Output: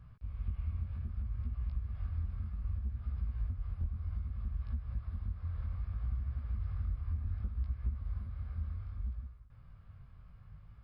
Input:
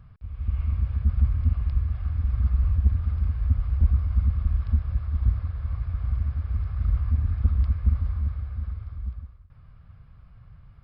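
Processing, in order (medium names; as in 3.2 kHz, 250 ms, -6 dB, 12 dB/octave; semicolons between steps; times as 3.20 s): compression, threshold -28 dBFS, peak gain reduction 14 dB; chorus 0.64 Hz, delay 17 ms, depth 6.9 ms; trim -2 dB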